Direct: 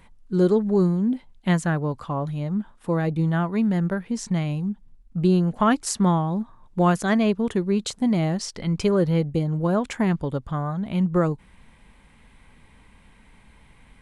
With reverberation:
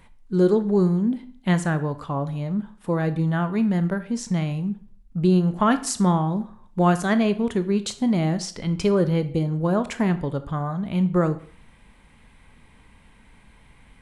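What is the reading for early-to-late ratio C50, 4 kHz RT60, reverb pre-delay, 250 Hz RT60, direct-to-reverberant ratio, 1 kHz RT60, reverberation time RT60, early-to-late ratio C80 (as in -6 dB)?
14.5 dB, 0.40 s, 18 ms, 0.45 s, 11.0 dB, 0.50 s, 0.50 s, 18.5 dB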